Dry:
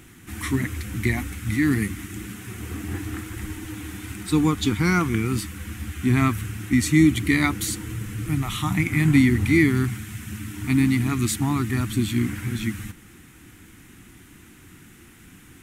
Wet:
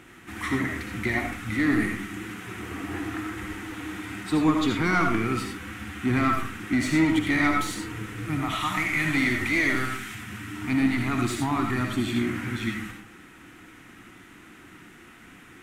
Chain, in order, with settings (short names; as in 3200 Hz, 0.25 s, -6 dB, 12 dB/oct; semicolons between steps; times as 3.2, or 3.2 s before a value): 8.61–10.15 tilt shelf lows -6 dB, about 1100 Hz; overdrive pedal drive 19 dB, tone 1300 Hz, clips at -5.5 dBFS; on a send: reverb RT60 0.40 s, pre-delay 35 ms, DRR 2 dB; on the sum: gain -6.5 dB